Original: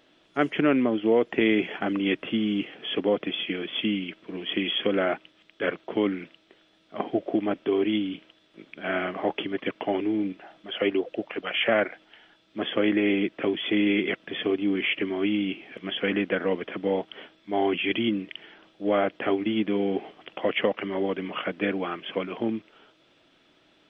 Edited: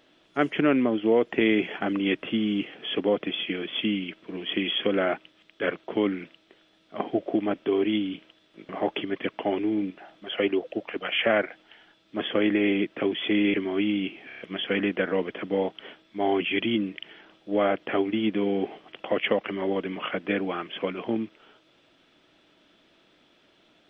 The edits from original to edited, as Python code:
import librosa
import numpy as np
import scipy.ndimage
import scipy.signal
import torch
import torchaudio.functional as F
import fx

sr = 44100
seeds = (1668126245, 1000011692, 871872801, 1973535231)

y = fx.edit(x, sr, fx.cut(start_s=8.69, length_s=0.42),
    fx.cut(start_s=13.96, length_s=1.03),
    fx.stutter(start_s=15.72, slice_s=0.03, count=5), tone=tone)